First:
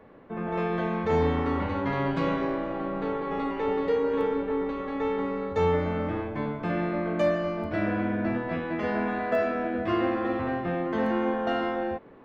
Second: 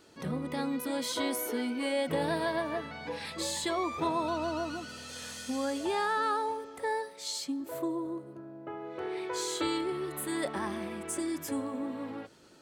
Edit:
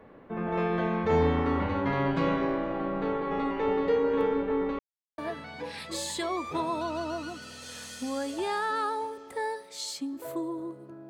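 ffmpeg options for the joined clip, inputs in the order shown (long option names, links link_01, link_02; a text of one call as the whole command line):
ffmpeg -i cue0.wav -i cue1.wav -filter_complex "[0:a]apad=whole_dur=11.09,atrim=end=11.09,asplit=2[link_01][link_02];[link_01]atrim=end=4.79,asetpts=PTS-STARTPTS,afade=type=out:start_time=4.786:duration=0.004:curve=hsin[link_03];[link_02]atrim=start=4.79:end=5.18,asetpts=PTS-STARTPTS,volume=0[link_04];[1:a]atrim=start=2.65:end=8.56,asetpts=PTS-STARTPTS,afade=type=in:duration=0.004:curve=hsin[link_05];[link_03][link_04][link_05]concat=n=3:v=0:a=1" out.wav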